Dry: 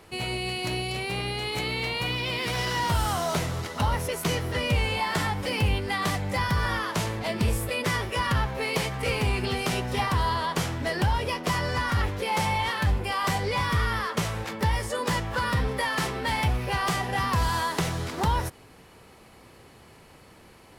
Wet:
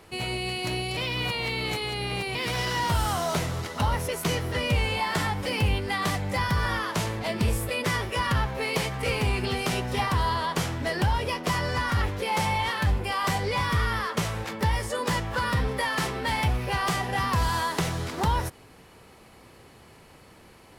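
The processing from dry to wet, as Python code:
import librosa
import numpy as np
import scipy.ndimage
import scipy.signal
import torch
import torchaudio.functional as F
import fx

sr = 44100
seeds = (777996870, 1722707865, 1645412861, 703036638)

y = fx.edit(x, sr, fx.reverse_span(start_s=0.97, length_s=1.38), tone=tone)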